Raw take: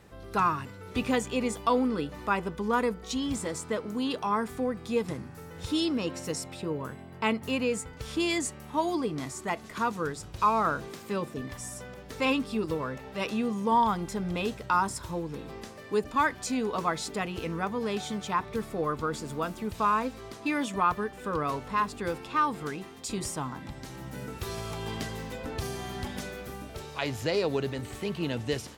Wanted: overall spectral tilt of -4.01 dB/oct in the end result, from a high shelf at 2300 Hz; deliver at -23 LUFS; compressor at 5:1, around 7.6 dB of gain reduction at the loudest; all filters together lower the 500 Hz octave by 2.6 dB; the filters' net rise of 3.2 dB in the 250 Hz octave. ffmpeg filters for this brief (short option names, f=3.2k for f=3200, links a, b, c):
-af "equalizer=f=250:t=o:g=5,equalizer=f=500:t=o:g=-5,highshelf=f=2.3k:g=5.5,acompressor=threshold=-28dB:ratio=5,volume=10.5dB"